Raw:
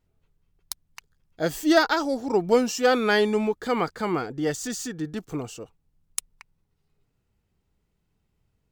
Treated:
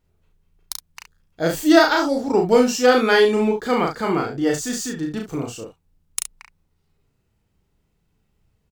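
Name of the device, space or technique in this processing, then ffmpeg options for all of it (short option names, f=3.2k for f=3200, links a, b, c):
slapback doubling: -filter_complex "[0:a]asplit=3[a][b][c];[b]adelay=36,volume=-3dB[d];[c]adelay=69,volume=-9dB[e];[a][d][e]amix=inputs=3:normalize=0,volume=3dB"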